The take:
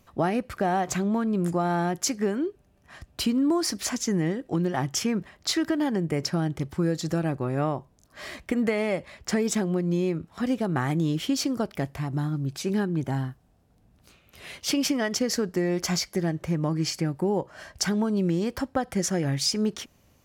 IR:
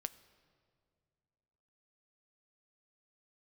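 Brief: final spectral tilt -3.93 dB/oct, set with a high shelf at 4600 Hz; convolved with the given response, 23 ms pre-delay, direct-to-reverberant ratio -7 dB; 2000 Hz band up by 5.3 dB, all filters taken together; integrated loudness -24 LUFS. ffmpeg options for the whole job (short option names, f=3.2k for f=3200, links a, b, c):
-filter_complex "[0:a]equalizer=f=2k:t=o:g=5,highshelf=f=4.6k:g=8,asplit=2[a][b];[1:a]atrim=start_sample=2205,adelay=23[c];[b][c]afir=irnorm=-1:irlink=0,volume=9.5dB[d];[a][d]amix=inputs=2:normalize=0,volume=-6.5dB"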